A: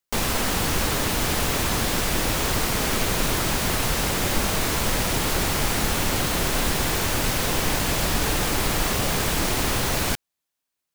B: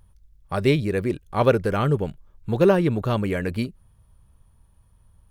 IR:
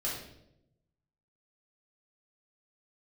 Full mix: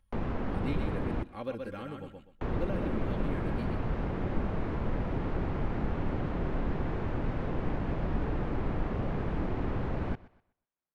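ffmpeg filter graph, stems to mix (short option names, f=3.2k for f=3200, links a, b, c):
-filter_complex "[0:a]lowpass=1k,volume=-5dB,asplit=3[a][b][c];[a]atrim=end=1.23,asetpts=PTS-STARTPTS,afade=t=out:st=1.226:d=0.004:c=hsin[d];[b]atrim=start=1.23:end=2.41,asetpts=PTS-STARTPTS,volume=0[e];[c]atrim=start=2.41,asetpts=PTS-STARTPTS,afade=t=in:d=0.004:c=hsin[f];[d][e][f]concat=n=3:v=0:a=1,asplit=2[g][h];[h]volume=-21.5dB[i];[1:a]aecho=1:1:3.7:0.67,volume=-17.5dB,asplit=2[j][k];[k]volume=-5.5dB[l];[i][l]amix=inputs=2:normalize=0,aecho=0:1:125|250|375|500:1|0.24|0.0576|0.0138[m];[g][j][m]amix=inputs=3:normalize=0,equalizer=f=2.4k:t=o:w=2.2:g=6.5,acrossover=split=430[n][o];[o]acompressor=threshold=-47dB:ratio=2[p];[n][p]amix=inputs=2:normalize=0"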